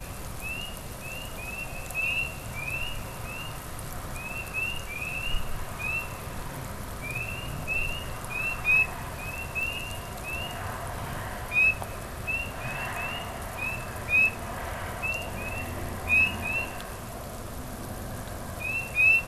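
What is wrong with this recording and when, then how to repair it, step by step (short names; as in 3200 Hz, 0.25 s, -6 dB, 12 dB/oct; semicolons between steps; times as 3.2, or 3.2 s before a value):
9.63 pop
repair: de-click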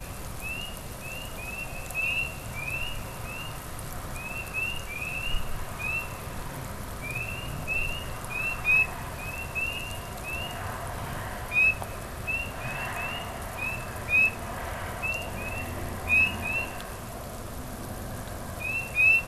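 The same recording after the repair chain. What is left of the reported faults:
none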